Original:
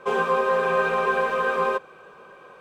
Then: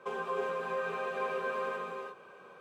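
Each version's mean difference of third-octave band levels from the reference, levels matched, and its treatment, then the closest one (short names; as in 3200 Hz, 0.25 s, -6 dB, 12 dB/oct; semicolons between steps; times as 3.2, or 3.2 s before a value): 4.0 dB: HPF 77 Hz 24 dB/oct; compressor, threshold -25 dBFS, peak gain reduction 7.5 dB; non-linear reverb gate 0.37 s rising, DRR 0 dB; gain -9 dB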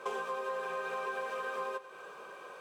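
6.5 dB: tone controls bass -11 dB, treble +8 dB; compressor 16:1, threshold -33 dBFS, peak gain reduction 15.5 dB; on a send: thinning echo 97 ms, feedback 66%, level -15.5 dB; on the sum: gain -1 dB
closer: first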